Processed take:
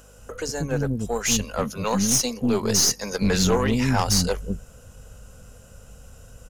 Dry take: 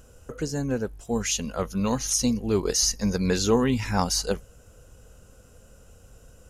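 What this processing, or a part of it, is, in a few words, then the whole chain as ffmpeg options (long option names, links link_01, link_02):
valve amplifier with mains hum: -filter_complex "[0:a]asettb=1/sr,asplit=3[link_01][link_02][link_03];[link_01]atrim=end=1.444[link_04];[link_02]atrim=start=1.44:end=3.03,asetpts=PTS-STARTPTS,afade=type=in:duration=0.004:curve=qsin,afade=type=out:start_time=1.586:duration=0.004:curve=qsin,highpass=frequency=98:width=0.5412,highpass=frequency=98:width=1.3066[link_05];[link_03]atrim=start=3.026[link_06];[link_04][link_05]acrossfade=duration=0.004:curve1=hsin:curve2=qsin[link_07];[link_07][link_06]acrossfade=duration=0.004:curve1=qsin:curve2=hsin,equalizer=frequency=330:width=2.4:gain=-5,acrossover=split=320[link_08][link_09];[link_08]adelay=190[link_10];[link_10][link_09]amix=inputs=2:normalize=0,aeval=exprs='(tanh(10*val(0)+0.4)-tanh(0.4))/10':channel_layout=same,aeval=exprs='val(0)+0.00126*(sin(2*PI*50*n/s)+sin(2*PI*2*50*n/s)/2+sin(2*PI*3*50*n/s)/3+sin(2*PI*4*50*n/s)/4+sin(2*PI*5*50*n/s)/5)':channel_layout=same,volume=7dB"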